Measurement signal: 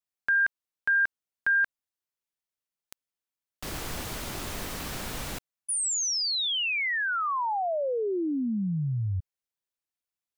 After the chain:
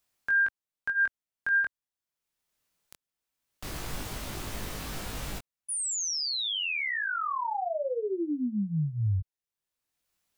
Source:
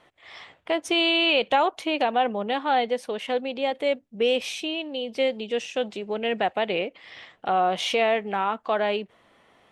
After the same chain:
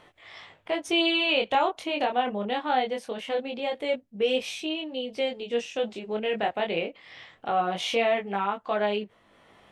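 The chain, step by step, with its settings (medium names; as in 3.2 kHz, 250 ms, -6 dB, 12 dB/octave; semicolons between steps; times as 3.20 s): bass shelf 130 Hz +5 dB; upward compressor 1.5:1, threshold -38 dBFS; chorus 0.22 Hz, delay 19 ms, depth 5.3 ms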